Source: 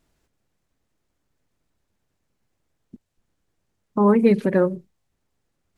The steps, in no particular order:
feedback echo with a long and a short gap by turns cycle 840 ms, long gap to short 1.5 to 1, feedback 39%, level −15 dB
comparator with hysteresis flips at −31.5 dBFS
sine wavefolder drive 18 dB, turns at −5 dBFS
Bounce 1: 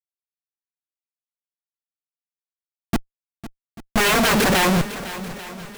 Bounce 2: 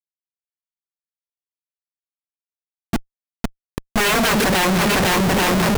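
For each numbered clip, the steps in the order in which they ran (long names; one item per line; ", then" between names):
sine wavefolder, then comparator with hysteresis, then feedback echo with a long and a short gap by turns
sine wavefolder, then feedback echo with a long and a short gap by turns, then comparator with hysteresis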